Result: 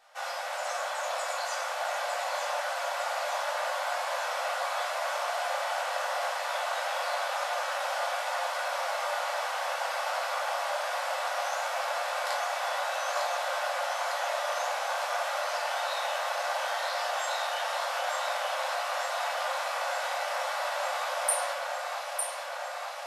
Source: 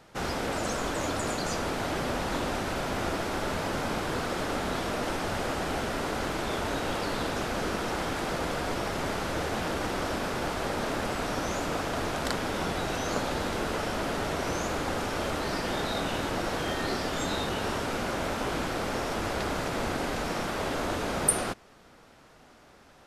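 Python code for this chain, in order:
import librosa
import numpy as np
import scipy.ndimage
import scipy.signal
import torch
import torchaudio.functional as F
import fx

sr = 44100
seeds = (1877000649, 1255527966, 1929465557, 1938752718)

y = fx.brickwall_highpass(x, sr, low_hz=500.0)
y = fx.echo_alternate(y, sr, ms=452, hz=2300.0, feedback_pct=87, wet_db=-3.5)
y = fx.room_shoebox(y, sr, seeds[0], volume_m3=420.0, walls='furnished', distance_m=3.5)
y = y * 10.0 ** (-7.0 / 20.0)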